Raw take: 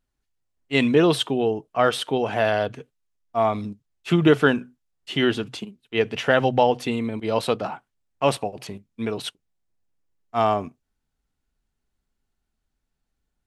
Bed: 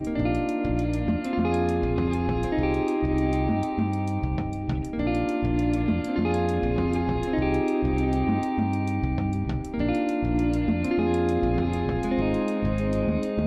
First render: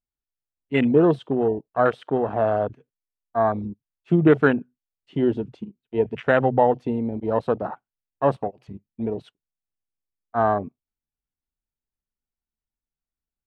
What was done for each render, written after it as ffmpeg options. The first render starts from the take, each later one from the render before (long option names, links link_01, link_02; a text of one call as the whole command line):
ffmpeg -i in.wav -af "aemphasis=mode=reproduction:type=75fm,afwtdn=0.0562" out.wav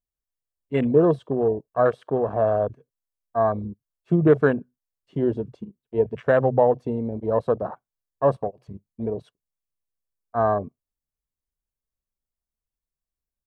ffmpeg -i in.wav -af "equalizer=frequency=2700:width=0.87:gain=-10,aecho=1:1:1.8:0.33" out.wav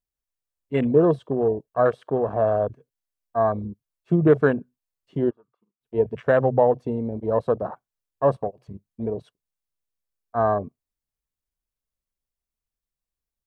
ffmpeg -i in.wav -filter_complex "[0:a]asplit=3[link_01][link_02][link_03];[link_01]afade=type=out:start_time=5.29:duration=0.02[link_04];[link_02]bandpass=frequency=1200:width_type=q:width=10,afade=type=in:start_time=5.29:duration=0.02,afade=type=out:start_time=5.8:duration=0.02[link_05];[link_03]afade=type=in:start_time=5.8:duration=0.02[link_06];[link_04][link_05][link_06]amix=inputs=3:normalize=0" out.wav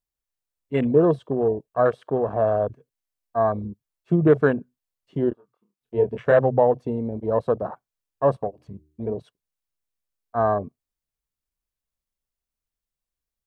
ffmpeg -i in.wav -filter_complex "[0:a]asettb=1/sr,asplit=3[link_01][link_02][link_03];[link_01]atrim=end=5.294[link_04];[link_02]atrim=start=5.29:end=6.39,asetpts=PTS-STARTPTS,afade=type=in:duration=0.004:curve=qsin,afade=type=out:start_time=1.096:duration=0.004:curve=qsin,asplit=2[link_05][link_06];[link_06]adelay=25,volume=-5dB[link_07];[link_05][link_07]amix=inputs=2:normalize=0,atrim=end_sample=48510[link_08];[link_03]atrim=start=6.386[link_09];[link_04][link_08]acrossfade=duration=0.004:curve1=hsin:curve2=qsin[link_10];[link_10][link_09]acrossfade=duration=0.004:curve1=qsin:curve2=hsin,asettb=1/sr,asplit=3[link_11][link_12][link_13];[link_11]atrim=end=8.464[link_14];[link_12]atrim=start=8.46:end=9.13,asetpts=PTS-STARTPTS,afade=type=in:duration=0.004:curve=qsin,afade=type=out:start_time=0.666:duration=0.004:curve=qsin,bandreject=frequency=75.85:width_type=h:width=4,bandreject=frequency=151.7:width_type=h:width=4,bandreject=frequency=227.55:width_type=h:width=4,bandreject=frequency=303.4:width_type=h:width=4,bandreject=frequency=379.25:width_type=h:width=4[link_15];[link_13]atrim=start=9.126[link_16];[link_14][link_15]acrossfade=duration=0.004:curve1=hsin:curve2=qsin[link_17];[link_17][link_16]acrossfade=duration=0.004:curve1=qsin:curve2=hsin" out.wav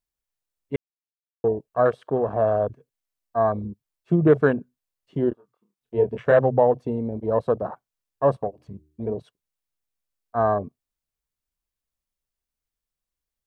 ffmpeg -i in.wav -filter_complex "[0:a]asplit=3[link_01][link_02][link_03];[link_01]atrim=end=0.76,asetpts=PTS-STARTPTS,afade=type=out:start_time=0.756:duration=0.004:curve=hsin[link_04];[link_02]atrim=start=0.76:end=1.44,asetpts=PTS-STARTPTS,volume=0[link_05];[link_03]atrim=start=1.44,asetpts=PTS-STARTPTS,afade=type=in:duration=0.004:curve=hsin[link_06];[link_04][link_05][link_06]concat=n=3:v=0:a=1" out.wav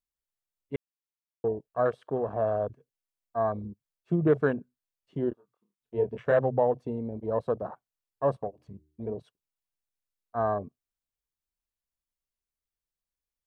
ffmpeg -i in.wav -af "volume=-6.5dB" out.wav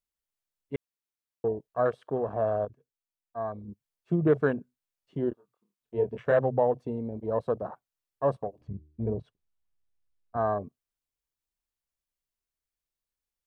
ffmpeg -i in.wav -filter_complex "[0:a]asettb=1/sr,asplit=3[link_01][link_02][link_03];[link_01]atrim=end=8.614[link_04];[link_02]atrim=start=8.61:end=10.37,asetpts=PTS-STARTPTS,afade=type=in:duration=0.004:curve=qsin,afade=type=out:start_time=1.756:duration=0.004:curve=qsin,aemphasis=mode=reproduction:type=bsi[link_05];[link_03]atrim=start=10.366[link_06];[link_04][link_05]acrossfade=duration=0.004:curve1=hsin:curve2=qsin[link_07];[link_07][link_06]acrossfade=duration=0.004:curve1=qsin:curve2=hsin,asplit=3[link_08][link_09][link_10];[link_08]atrim=end=2.652[link_11];[link_09]atrim=start=2.648:end=3.682,asetpts=PTS-STARTPTS,volume=-6dB[link_12];[link_10]atrim=start=3.678[link_13];[link_11][link_12]acrossfade=duration=0.004:curve1=hsin:curve2=hsin[link_14];[link_14][link_13]acrossfade=duration=0.004:curve1=hsin:curve2=hsin" out.wav